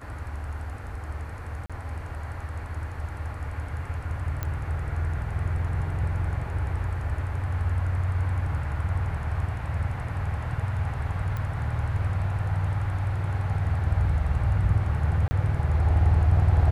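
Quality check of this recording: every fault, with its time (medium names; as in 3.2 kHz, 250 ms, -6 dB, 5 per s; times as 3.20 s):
1.66–1.70 s: dropout 36 ms
4.43 s: pop -16 dBFS
11.37 s: pop -21 dBFS
15.28–15.31 s: dropout 30 ms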